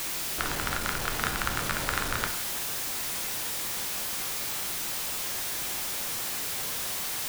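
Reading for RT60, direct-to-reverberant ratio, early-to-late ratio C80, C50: 0.65 s, 4.5 dB, 13.5 dB, 10.0 dB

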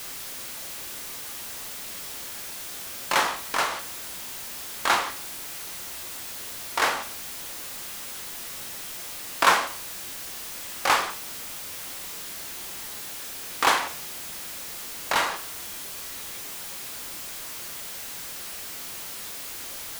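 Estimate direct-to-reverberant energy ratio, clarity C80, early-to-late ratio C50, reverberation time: 5.5 dB, 17.0 dB, 12.5 dB, 0.40 s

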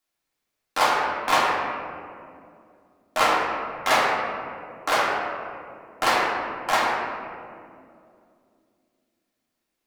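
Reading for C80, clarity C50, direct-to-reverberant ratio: 1.5 dB, 0.0 dB, -6.0 dB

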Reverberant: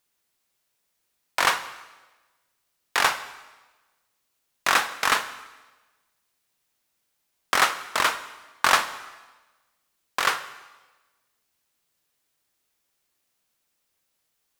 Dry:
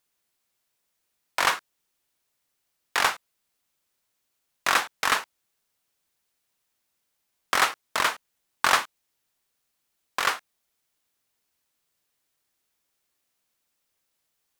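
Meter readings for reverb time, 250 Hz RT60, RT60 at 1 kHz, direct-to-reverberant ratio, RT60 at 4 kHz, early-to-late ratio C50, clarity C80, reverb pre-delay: 1.2 s, 1.2 s, 1.2 s, 11.0 dB, 1.1 s, 13.0 dB, 15.0 dB, 7 ms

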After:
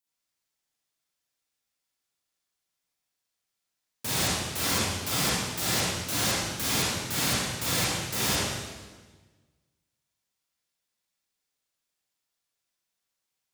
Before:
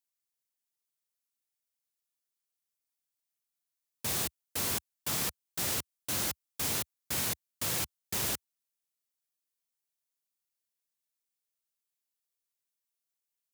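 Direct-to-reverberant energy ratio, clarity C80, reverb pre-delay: -9.0 dB, -1.0 dB, 30 ms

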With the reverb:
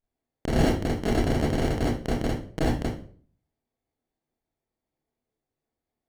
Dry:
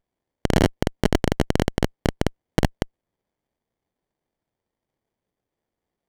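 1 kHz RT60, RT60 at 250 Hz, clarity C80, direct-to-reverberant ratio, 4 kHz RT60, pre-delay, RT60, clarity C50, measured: 0.40 s, 0.55 s, 8.0 dB, -9.0 dB, 0.35 s, 25 ms, 0.50 s, 2.0 dB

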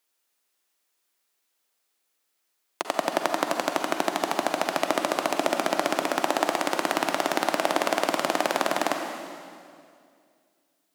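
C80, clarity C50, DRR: 5.0 dB, 4.0 dB, 3.5 dB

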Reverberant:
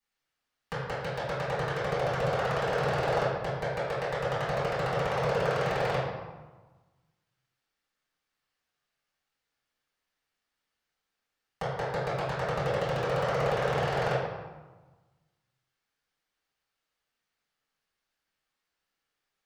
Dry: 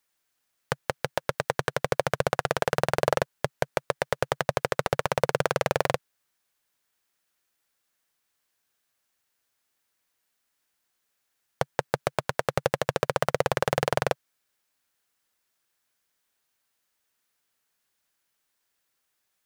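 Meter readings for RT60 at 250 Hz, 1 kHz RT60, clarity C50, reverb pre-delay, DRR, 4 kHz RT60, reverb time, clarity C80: 1.5 s, 1.3 s, -0.5 dB, 3 ms, -13.5 dB, 0.80 s, 1.2 s, 2.5 dB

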